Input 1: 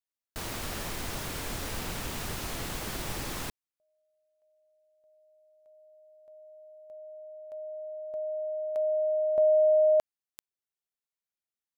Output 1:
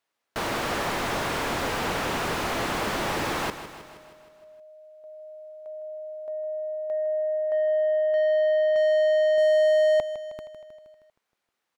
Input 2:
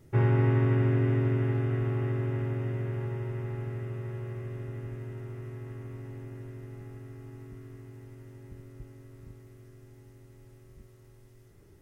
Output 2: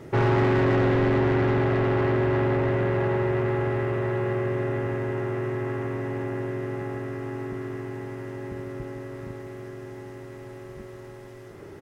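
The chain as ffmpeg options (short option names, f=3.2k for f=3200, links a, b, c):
-filter_complex "[0:a]asplit=2[a][b];[b]highpass=f=720:p=1,volume=31dB,asoftclip=type=tanh:threshold=-13.5dB[c];[a][c]amix=inputs=2:normalize=0,lowpass=f=1k:p=1,volume=-6dB,aecho=1:1:157|314|471|628|785|942|1099:0.251|0.151|0.0904|0.0543|0.0326|0.0195|0.0117"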